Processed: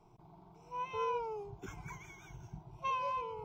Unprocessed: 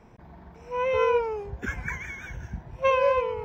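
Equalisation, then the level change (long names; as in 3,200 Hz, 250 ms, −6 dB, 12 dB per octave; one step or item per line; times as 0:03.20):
phaser with its sweep stopped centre 350 Hz, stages 8
−7.0 dB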